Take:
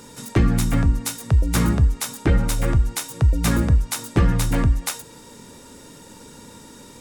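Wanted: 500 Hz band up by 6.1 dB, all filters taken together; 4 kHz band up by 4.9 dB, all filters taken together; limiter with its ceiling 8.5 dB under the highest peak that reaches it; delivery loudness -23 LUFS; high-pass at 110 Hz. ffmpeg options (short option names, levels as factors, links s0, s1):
-af "highpass=110,equalizer=f=500:t=o:g=7.5,equalizer=f=4000:t=o:g=6,volume=1.19,alimiter=limit=0.282:level=0:latency=1"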